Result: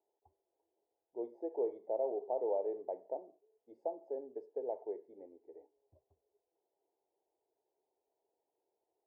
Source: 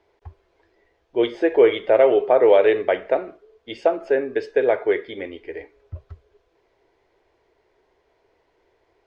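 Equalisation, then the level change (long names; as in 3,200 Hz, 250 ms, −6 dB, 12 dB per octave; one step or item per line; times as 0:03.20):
elliptic low-pass filter 860 Hz, stop band 40 dB
first difference
parametric band 260 Hz +4.5 dB 1.5 octaves
+1.0 dB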